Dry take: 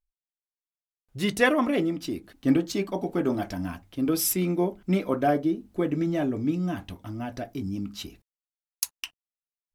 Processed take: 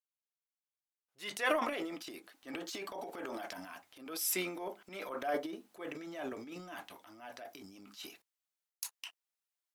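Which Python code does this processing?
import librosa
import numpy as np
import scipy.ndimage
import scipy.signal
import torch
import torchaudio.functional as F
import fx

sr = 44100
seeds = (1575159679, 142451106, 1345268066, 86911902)

y = scipy.signal.sosfilt(scipy.signal.butter(2, 690.0, 'highpass', fs=sr, output='sos'), x)
y = fx.transient(y, sr, attack_db=-7, sustain_db=10)
y = F.gain(torch.from_numpy(y), -6.5).numpy()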